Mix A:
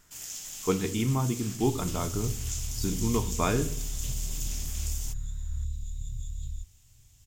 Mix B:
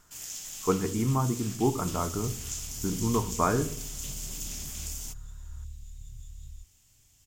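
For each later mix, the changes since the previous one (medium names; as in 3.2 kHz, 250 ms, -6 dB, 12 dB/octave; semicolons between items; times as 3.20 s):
speech: add resonant low-pass 1.3 kHz, resonance Q 1.6; second sound -8.5 dB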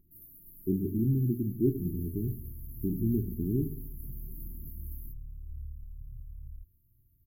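first sound -3.5 dB; master: add brick-wall FIR band-stop 410–11000 Hz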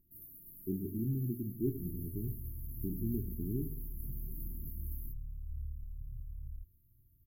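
speech -7.5 dB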